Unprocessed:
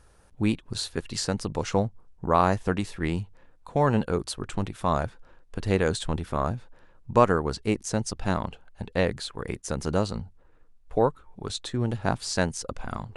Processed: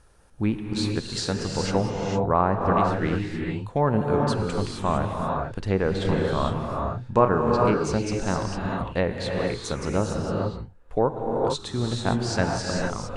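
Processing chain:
treble cut that deepens with the level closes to 1,600 Hz, closed at −18 dBFS
0:05.93–0:07.43: double-tracking delay 31 ms −7 dB
reverb whose tail is shaped and stops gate 480 ms rising, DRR 0 dB

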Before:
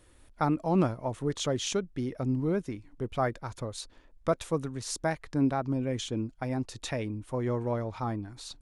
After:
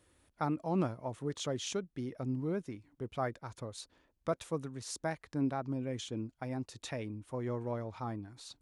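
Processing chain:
high-pass filter 67 Hz
level −6.5 dB

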